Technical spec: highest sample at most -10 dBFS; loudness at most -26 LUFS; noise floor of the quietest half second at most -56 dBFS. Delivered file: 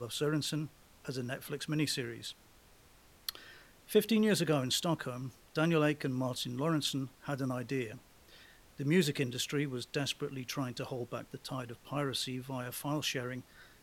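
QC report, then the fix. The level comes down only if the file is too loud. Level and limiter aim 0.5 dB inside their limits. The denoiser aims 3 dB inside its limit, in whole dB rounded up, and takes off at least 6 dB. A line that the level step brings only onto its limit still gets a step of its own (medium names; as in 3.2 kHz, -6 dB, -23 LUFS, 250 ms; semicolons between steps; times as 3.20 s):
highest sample -14.5 dBFS: pass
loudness -35.0 LUFS: pass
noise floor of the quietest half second -61 dBFS: pass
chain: none needed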